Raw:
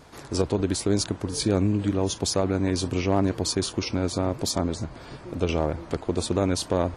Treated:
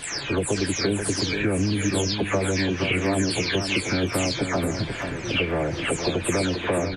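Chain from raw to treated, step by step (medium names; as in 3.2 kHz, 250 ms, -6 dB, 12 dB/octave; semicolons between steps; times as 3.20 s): delay that grows with frequency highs early, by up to 320 ms; high-order bell 2.2 kHz +11 dB 1.2 oct; compression 4:1, threshold -28 dBFS, peak gain reduction 9 dB; on a send: delay 485 ms -7 dB; on the sum: trim +6.5 dB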